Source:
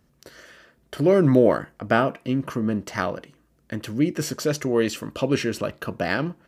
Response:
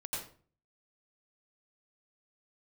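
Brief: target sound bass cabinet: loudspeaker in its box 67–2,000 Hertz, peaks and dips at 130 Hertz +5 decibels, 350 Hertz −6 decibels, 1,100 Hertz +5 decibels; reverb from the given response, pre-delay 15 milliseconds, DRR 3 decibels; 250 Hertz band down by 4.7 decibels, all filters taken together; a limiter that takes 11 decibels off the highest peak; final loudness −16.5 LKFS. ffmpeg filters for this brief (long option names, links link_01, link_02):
-filter_complex "[0:a]equalizer=frequency=250:width_type=o:gain=-4.5,alimiter=limit=-15dB:level=0:latency=1,asplit=2[link_01][link_02];[1:a]atrim=start_sample=2205,adelay=15[link_03];[link_02][link_03]afir=irnorm=-1:irlink=0,volume=-4.5dB[link_04];[link_01][link_04]amix=inputs=2:normalize=0,highpass=frequency=67:width=0.5412,highpass=frequency=67:width=1.3066,equalizer=frequency=130:width_type=q:width=4:gain=5,equalizer=frequency=350:width_type=q:width=4:gain=-6,equalizer=frequency=1100:width_type=q:width=4:gain=5,lowpass=frequency=2000:width=0.5412,lowpass=frequency=2000:width=1.3066,volume=9.5dB"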